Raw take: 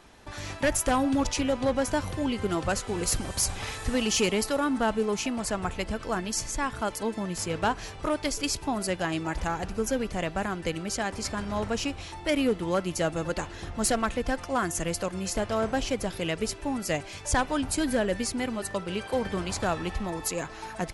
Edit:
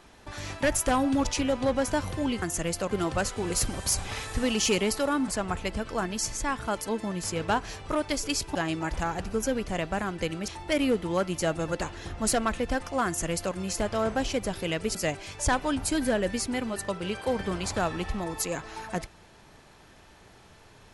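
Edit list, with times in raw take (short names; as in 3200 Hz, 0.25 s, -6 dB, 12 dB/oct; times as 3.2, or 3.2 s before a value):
4.79–5.42 cut
8.69–8.99 cut
10.92–12.05 cut
14.63–15.12 copy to 2.42
16.52–16.81 cut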